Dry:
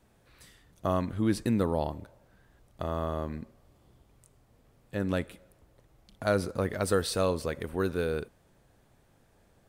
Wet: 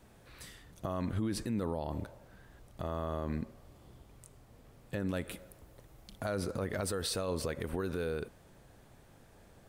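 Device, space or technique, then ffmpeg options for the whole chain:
stacked limiters: -filter_complex "[0:a]alimiter=limit=0.0891:level=0:latency=1:release=108,alimiter=level_in=1.33:limit=0.0631:level=0:latency=1:release=90,volume=0.75,alimiter=level_in=2.24:limit=0.0631:level=0:latency=1:release=94,volume=0.447,asettb=1/sr,asplit=3[s0][s1][s2];[s0]atrim=end=5.064[s3];[s1]atrim=start=5.06:end=6.26,asetpts=PTS-STARTPTS,afade=t=in:d=0.004:c=qsin,afade=t=out:st=1.196:d=0.004:c=qsin,highshelf=f=9000:g=6.5[s4];[s2]atrim=start=6.256[s5];[s3][s4]acrossfade=d=0.004:c1=hsin:c2=qsin[s6];[s6][s5]acrossfade=d=0.004:c1=qsin:c2=hsin,volume=1.78"

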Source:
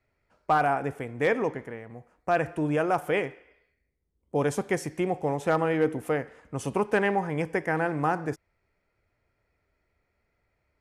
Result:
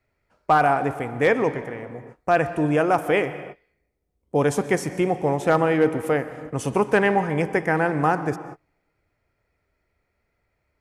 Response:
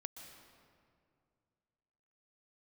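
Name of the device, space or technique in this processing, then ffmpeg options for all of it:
keyed gated reverb: -filter_complex "[0:a]asplit=3[s0][s1][s2];[1:a]atrim=start_sample=2205[s3];[s1][s3]afir=irnorm=-1:irlink=0[s4];[s2]apad=whole_len=476703[s5];[s4][s5]sidechaingate=range=0.0224:threshold=0.00158:ratio=16:detection=peak,volume=1[s6];[s0][s6]amix=inputs=2:normalize=0,volume=1.19"

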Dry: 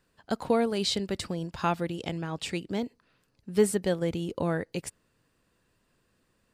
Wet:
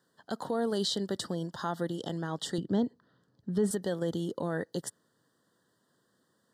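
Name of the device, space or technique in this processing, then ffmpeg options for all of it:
PA system with an anti-feedback notch: -filter_complex "[0:a]highpass=110,highpass=120,asuperstop=centerf=2400:order=12:qfactor=2.3,alimiter=limit=0.0841:level=0:latency=1:release=47,asettb=1/sr,asplit=3[s0][s1][s2];[s0]atrim=end=2.584[s3];[s1]atrim=start=2.58:end=3.71,asetpts=PTS-STARTPTS,afade=t=in:d=0.004:c=qsin,afade=t=out:st=1.126:d=0.004:c=qsin,aemphasis=mode=reproduction:type=bsi[s4];[s2]atrim=start=3.706[s5];[s3][s4]acrossfade=d=0.004:c1=hsin:c2=qsin[s6];[s6][s5]acrossfade=d=0.004:c1=qsin:c2=hsin"

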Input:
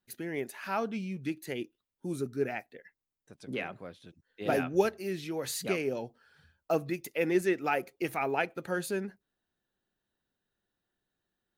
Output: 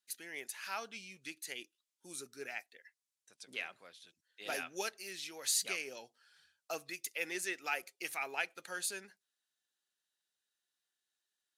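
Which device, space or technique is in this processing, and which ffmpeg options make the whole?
piezo pickup straight into a mixer: -af "lowpass=8100,aderivative,volume=2.51"

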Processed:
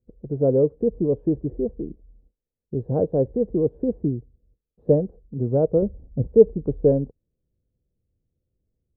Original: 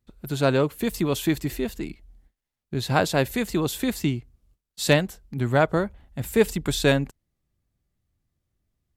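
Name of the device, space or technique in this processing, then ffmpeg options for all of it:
under water: -filter_complex "[0:a]asettb=1/sr,asplit=3[s0][s1][s2];[s0]atrim=end=5.824[s3];[s1]atrim=start=5.82:end=6.27,asetpts=PTS-STARTPTS,afade=t=in:d=0.004:c=qsin,afade=t=out:st=0.446:d=0.004:c=qsin,tiltshelf=f=780:g=7.5[s4];[s2]atrim=start=6.266[s5];[s3][s4]acrossfade=d=0.004:c1=hsin:c2=qsin[s6];[s6][s5]acrossfade=d=0.004:c1=qsin:c2=hsin,lowpass=f=550:w=0.5412,lowpass=f=550:w=1.3066,equalizer=f=480:t=o:w=0.39:g=10.5"

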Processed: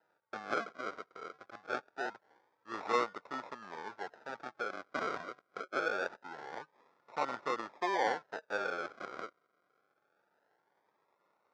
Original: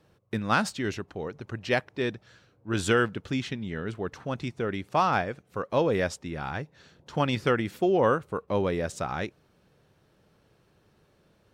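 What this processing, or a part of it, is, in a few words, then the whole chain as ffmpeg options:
circuit-bent sampling toy: -filter_complex "[0:a]asettb=1/sr,asplit=3[s0][s1][s2];[s0]atrim=end=2.934[s3];[s1]atrim=start=2.93:end=3.44,asetpts=PTS-STARTPTS,afade=t=in:d=0.004:c=qsin,afade=t=out:st=0.506:d=0.004:c=qsin,equalizer=f=630:w=1.8:g=9.5[s4];[s2]atrim=start=3.436[s5];[s3][s4]acrossfade=d=0.004:c1=hsin:c2=qsin[s6];[s6][s5]acrossfade=d=0.004:c1=qsin:c2=hsin,acrusher=samples=39:mix=1:aa=0.000001:lfo=1:lforange=23.4:lforate=0.24,highpass=520,equalizer=f=880:t=q:w=4:g=6,equalizer=f=1400:t=q:w=4:g=9,equalizer=f=2900:t=q:w=4:g=-9,equalizer=f=4200:t=q:w=4:g=-5,lowpass=f=4900:w=0.5412,lowpass=f=4900:w=1.3066,volume=0.398"

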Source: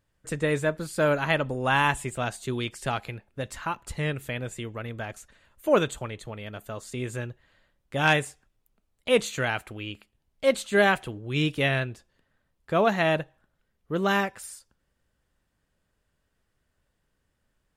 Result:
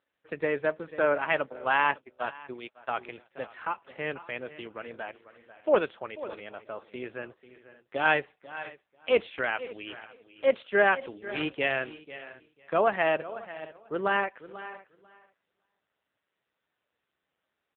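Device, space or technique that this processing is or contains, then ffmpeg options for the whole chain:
satellite phone: -filter_complex "[0:a]aecho=1:1:492|984:0.168|0.0269,asplit=3[s0][s1][s2];[s0]afade=t=out:st=1.42:d=0.02[s3];[s1]agate=range=0.01:threshold=0.0447:ratio=16:detection=peak,afade=t=in:st=1.42:d=0.02,afade=t=out:st=2.93:d=0.02[s4];[s2]afade=t=in:st=2.93:d=0.02[s5];[s3][s4][s5]amix=inputs=3:normalize=0,highpass=360,lowpass=3100,aecho=1:1:555:0.0891" -ar 8000 -c:a libopencore_amrnb -b:a 6700

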